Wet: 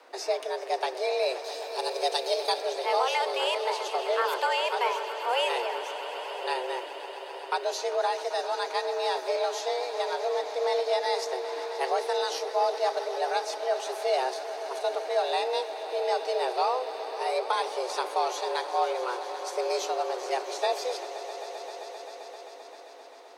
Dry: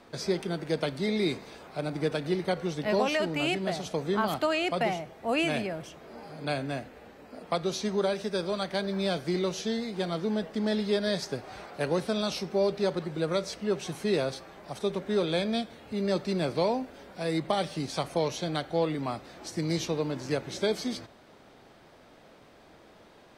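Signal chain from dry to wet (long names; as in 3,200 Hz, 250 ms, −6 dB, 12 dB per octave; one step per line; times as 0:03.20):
0:01.44–0:02.62: high shelf with overshoot 2,800 Hz +10 dB, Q 1.5
echo that builds up and dies away 131 ms, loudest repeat 5, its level −16 dB
frequency shifter +250 Hz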